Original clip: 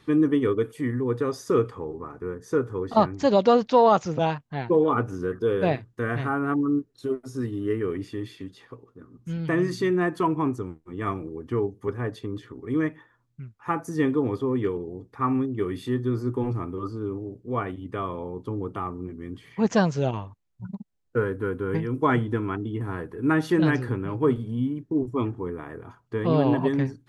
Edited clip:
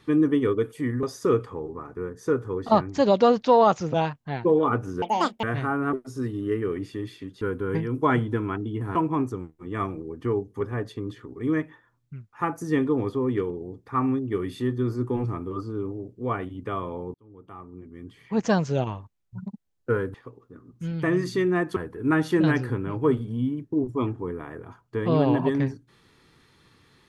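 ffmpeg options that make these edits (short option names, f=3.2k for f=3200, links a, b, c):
-filter_complex "[0:a]asplit=10[a][b][c][d][e][f][g][h][i][j];[a]atrim=end=1.032[k];[b]atrim=start=1.278:end=5.274[l];[c]atrim=start=5.27:end=6.05,asetpts=PTS-STARTPTS,asetrate=83349,aresample=44100[m];[d]atrim=start=6.046:end=6.552[n];[e]atrim=start=7.118:end=8.602[o];[f]atrim=start=21.408:end=22.952[p];[g]atrim=start=10.218:end=18.41,asetpts=PTS-STARTPTS,afade=t=out:st=8.188:d=0.004:c=hsin[q];[h]atrim=start=18.41:end=21.412,asetpts=PTS-STARTPTS,afade=t=in:d=1.58[r];[i]atrim=start=8.598:end=10.222[s];[j]atrim=start=22.948[t];[k][l]acrossfade=d=0.004:c1=hsin:c2=hsin[u];[u][m]acrossfade=d=0.004:c1=hsin:c2=hsin[v];[v][n]acrossfade=d=0.004:c1=hsin:c2=hsin[w];[w][o]acrossfade=d=0.004:c1=hsin:c2=hsin[x];[x][p]acrossfade=d=0.004:c1=hsin:c2=hsin[y];[q][r]concat=n=2:v=0:a=1[z];[y][z]acrossfade=d=0.004:c1=hsin:c2=hsin[aa];[aa][s]acrossfade=d=0.004:c1=hsin:c2=hsin[ab];[ab][t]acrossfade=d=0.004:c1=hsin:c2=hsin"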